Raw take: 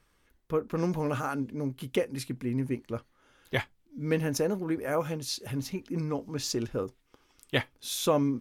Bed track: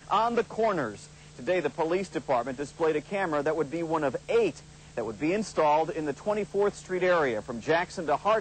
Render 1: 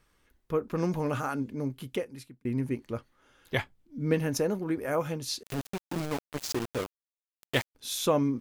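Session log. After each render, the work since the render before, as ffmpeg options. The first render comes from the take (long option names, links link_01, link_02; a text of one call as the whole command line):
ffmpeg -i in.wav -filter_complex "[0:a]asettb=1/sr,asplit=3[link_01][link_02][link_03];[link_01]atrim=end=3.604[link_04];[link_02]atrim=start=3.6:end=4.14,asetpts=PTS-STARTPTS,afade=type=in:duration=0.004:curve=qsin,afade=type=out:start_time=0.536:duration=0.004:curve=qsin,tiltshelf=frequency=970:gain=3[link_05];[link_03]atrim=start=4.136[link_06];[link_04][link_05]acrossfade=duration=0.004:curve1=hsin:curve2=qsin[link_07];[link_07][link_06]acrossfade=duration=0.004:curve1=qsin:curve2=hsin,asettb=1/sr,asplit=3[link_08][link_09][link_10];[link_08]atrim=end=5.434[link_11];[link_09]atrim=start=5.43:end=7.75,asetpts=PTS-STARTPTS,afade=type=in:duration=0.004:curve=qsin,afade=type=out:start_time=2.316:duration=0.004:curve=qsin,aeval=exprs='val(0)*gte(abs(val(0)),0.0316)':channel_layout=same[link_12];[link_10]atrim=start=7.746[link_13];[link_11][link_12]acrossfade=duration=0.004:curve1=hsin:curve2=qsin[link_14];[link_14][link_13]acrossfade=duration=0.004:curve1=qsin:curve2=hsin,asplit=2[link_15][link_16];[link_15]atrim=end=2.45,asetpts=PTS-STARTPTS,afade=type=out:start_time=1.68:duration=0.77[link_17];[link_16]atrim=start=2.45,asetpts=PTS-STARTPTS,afade=type=in:duration=0.004:curve=hsin[link_18];[link_17][link_18]concat=n=2:v=0:a=1" out.wav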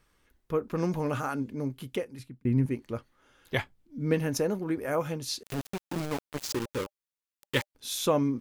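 ffmpeg -i in.wav -filter_complex "[0:a]asettb=1/sr,asplit=3[link_01][link_02][link_03];[link_01]atrim=end=2.194[link_04];[link_02]atrim=start=2.19:end=2.66,asetpts=PTS-STARTPTS,afade=type=in:duration=0.004:curve=qsin,afade=type=out:start_time=0.466:duration=0.004:curve=qsin,bass=frequency=250:gain=8,treble=frequency=4000:gain=-4[link_05];[link_03]atrim=start=2.656[link_06];[link_04][link_05]acrossfade=duration=0.004:curve1=hsin:curve2=qsin[link_07];[link_07][link_06]acrossfade=duration=0.004:curve1=qsin:curve2=hsin,asettb=1/sr,asplit=3[link_08][link_09][link_10];[link_08]atrim=end=6.464[link_11];[link_09]atrim=start=6.46:end=7.71,asetpts=PTS-STARTPTS,afade=type=in:duration=0.004:curve=qsin,afade=type=out:start_time=1.246:duration=0.004:curve=qsin,asuperstop=centerf=690:order=12:qfactor=3.5[link_12];[link_10]atrim=start=7.706[link_13];[link_11][link_12]acrossfade=duration=0.004:curve1=hsin:curve2=qsin[link_14];[link_14][link_13]acrossfade=duration=0.004:curve1=qsin:curve2=hsin" out.wav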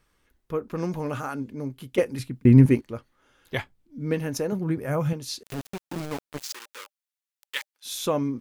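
ffmpeg -i in.wav -filter_complex "[0:a]asettb=1/sr,asplit=3[link_01][link_02][link_03];[link_01]atrim=end=4.524[link_04];[link_02]atrim=start=4.52:end=5.13,asetpts=PTS-STARTPTS,afade=type=in:duration=0.004:curve=qsin,afade=type=out:start_time=0.606:duration=0.004:curve=qsin,equalizer=frequency=140:width=1.7:gain=14.5[link_05];[link_03]atrim=start=5.126[link_06];[link_04][link_05]acrossfade=duration=0.004:curve1=hsin:curve2=qsin[link_07];[link_07][link_06]acrossfade=duration=0.004:curve1=qsin:curve2=hsin,asettb=1/sr,asplit=3[link_08][link_09][link_10];[link_08]atrim=end=6.424[link_11];[link_09]atrim=start=6.42:end=7.86,asetpts=PTS-STARTPTS,afade=type=in:duration=0.004:curve=qsin,afade=type=out:start_time=1.436:duration=0.004:curve=qsin,highpass=1300[link_12];[link_10]atrim=start=7.856[link_13];[link_11][link_12]acrossfade=duration=0.004:curve1=hsin:curve2=qsin[link_14];[link_14][link_13]acrossfade=duration=0.004:curve1=qsin:curve2=hsin,asplit=3[link_15][link_16][link_17];[link_15]atrim=end=1.982[link_18];[link_16]atrim=start=1.978:end=2.812,asetpts=PTS-STARTPTS,volume=11.5dB[link_19];[link_17]atrim=start=2.808[link_20];[link_18][link_19]acrossfade=duration=0.004:curve1=hsin:curve2=hsin[link_21];[link_21][link_20]acrossfade=duration=0.004:curve1=hsin:curve2=hsin" out.wav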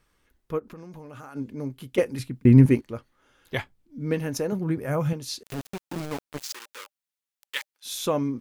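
ffmpeg -i in.wav -filter_complex "[0:a]asplit=3[link_01][link_02][link_03];[link_01]afade=type=out:start_time=0.58:duration=0.02[link_04];[link_02]acompressor=threshold=-38dB:ratio=12:attack=3.2:release=140:knee=1:detection=peak,afade=type=in:start_time=0.58:duration=0.02,afade=type=out:start_time=1.35:duration=0.02[link_05];[link_03]afade=type=in:start_time=1.35:duration=0.02[link_06];[link_04][link_05][link_06]amix=inputs=3:normalize=0" out.wav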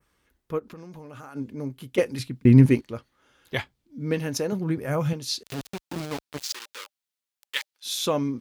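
ffmpeg -i in.wav -af "highpass=40,adynamicequalizer=threshold=0.00447:dfrequency=4100:dqfactor=0.94:tfrequency=4100:tqfactor=0.94:attack=5:release=100:ratio=0.375:range=3:mode=boostabove:tftype=bell" out.wav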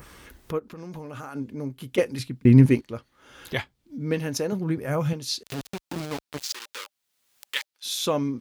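ffmpeg -i in.wav -af "acompressor=mode=upward:threshold=-30dB:ratio=2.5" out.wav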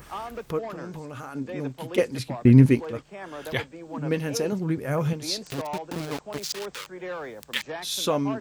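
ffmpeg -i in.wav -i bed.wav -filter_complex "[1:a]volume=-10.5dB[link_01];[0:a][link_01]amix=inputs=2:normalize=0" out.wav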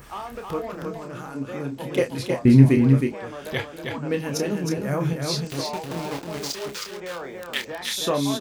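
ffmpeg -i in.wav -filter_complex "[0:a]asplit=2[link_01][link_02];[link_02]adelay=29,volume=-6.5dB[link_03];[link_01][link_03]amix=inputs=2:normalize=0,asplit=2[link_04][link_05];[link_05]aecho=0:1:316:0.596[link_06];[link_04][link_06]amix=inputs=2:normalize=0" out.wav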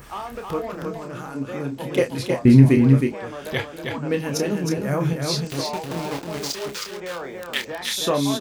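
ffmpeg -i in.wav -af "volume=2dB,alimiter=limit=-1dB:level=0:latency=1" out.wav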